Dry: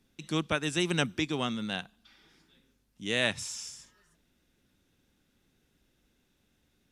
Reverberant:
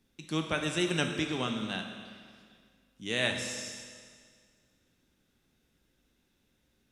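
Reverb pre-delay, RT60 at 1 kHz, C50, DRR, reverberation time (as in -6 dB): 9 ms, 1.9 s, 5.5 dB, 3.5 dB, 1.9 s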